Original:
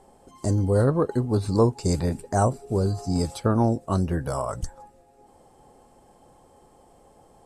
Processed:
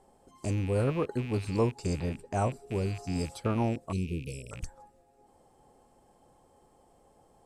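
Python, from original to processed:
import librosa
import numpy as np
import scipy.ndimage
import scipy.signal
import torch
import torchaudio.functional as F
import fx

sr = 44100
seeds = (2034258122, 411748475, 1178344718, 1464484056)

y = fx.rattle_buzz(x, sr, strikes_db=-32.0, level_db=-27.0)
y = fx.high_shelf(y, sr, hz=7100.0, db=-8.5, at=(1.86, 2.52))
y = fx.cheby1_bandstop(y, sr, low_hz=460.0, high_hz=2400.0, order=4, at=(3.91, 4.51), fade=0.02)
y = F.gain(torch.from_numpy(y), -7.5).numpy()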